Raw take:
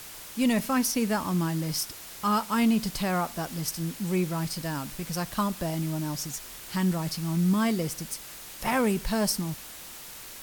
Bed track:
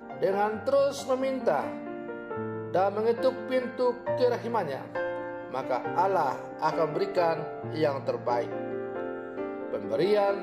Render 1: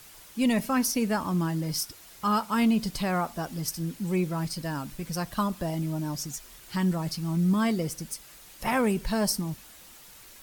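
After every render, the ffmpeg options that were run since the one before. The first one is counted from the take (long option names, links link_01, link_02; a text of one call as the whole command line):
ffmpeg -i in.wav -af "afftdn=noise_reduction=8:noise_floor=-43" out.wav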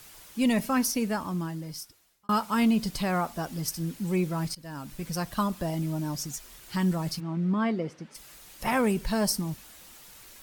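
ffmpeg -i in.wav -filter_complex "[0:a]asplit=3[link_01][link_02][link_03];[link_01]afade=type=out:start_time=7.19:duration=0.02[link_04];[link_02]highpass=190,lowpass=2400,afade=type=in:start_time=7.19:duration=0.02,afade=type=out:start_time=8.14:duration=0.02[link_05];[link_03]afade=type=in:start_time=8.14:duration=0.02[link_06];[link_04][link_05][link_06]amix=inputs=3:normalize=0,asplit=3[link_07][link_08][link_09];[link_07]atrim=end=2.29,asetpts=PTS-STARTPTS,afade=type=out:start_time=0.77:duration=1.52[link_10];[link_08]atrim=start=2.29:end=4.55,asetpts=PTS-STARTPTS,afade=type=in:duration=0.004:curve=hsin,afade=type=out:start_time=2.256:duration=0.004:curve=hsin:silence=0.125893[link_11];[link_09]atrim=start=4.55,asetpts=PTS-STARTPTS,afade=type=in:duration=0.48:silence=0.125893[link_12];[link_10][link_11][link_12]concat=n=3:v=0:a=1" out.wav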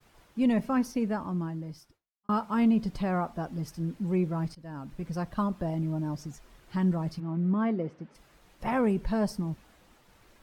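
ffmpeg -i in.wav -af "lowpass=frequency=1000:poles=1,agate=range=-33dB:threshold=-57dB:ratio=3:detection=peak" out.wav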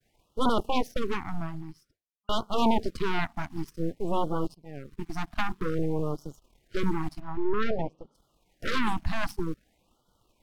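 ffmpeg -i in.wav -af "aeval=exprs='0.158*(cos(1*acos(clip(val(0)/0.158,-1,1)))-cos(1*PI/2))+0.0708*(cos(3*acos(clip(val(0)/0.158,-1,1)))-cos(3*PI/2))+0.0631*(cos(6*acos(clip(val(0)/0.158,-1,1)))-cos(6*PI/2))':channel_layout=same,afftfilt=real='re*(1-between(b*sr/1024,430*pow(2100/430,0.5+0.5*sin(2*PI*0.52*pts/sr))/1.41,430*pow(2100/430,0.5+0.5*sin(2*PI*0.52*pts/sr))*1.41))':imag='im*(1-between(b*sr/1024,430*pow(2100/430,0.5+0.5*sin(2*PI*0.52*pts/sr))/1.41,430*pow(2100/430,0.5+0.5*sin(2*PI*0.52*pts/sr))*1.41))':win_size=1024:overlap=0.75" out.wav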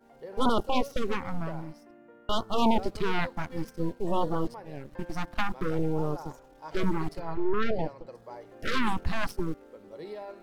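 ffmpeg -i in.wav -i bed.wav -filter_complex "[1:a]volume=-16.5dB[link_01];[0:a][link_01]amix=inputs=2:normalize=0" out.wav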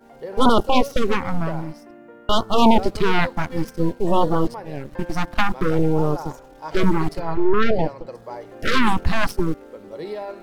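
ffmpeg -i in.wav -af "volume=9.5dB" out.wav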